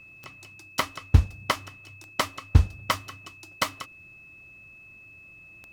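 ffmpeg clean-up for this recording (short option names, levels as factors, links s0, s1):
-af "adeclick=t=4,bandreject=f=2600:w=30"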